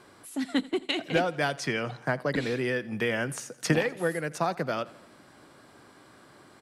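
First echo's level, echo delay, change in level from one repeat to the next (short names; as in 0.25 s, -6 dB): -21.0 dB, 84 ms, -4.5 dB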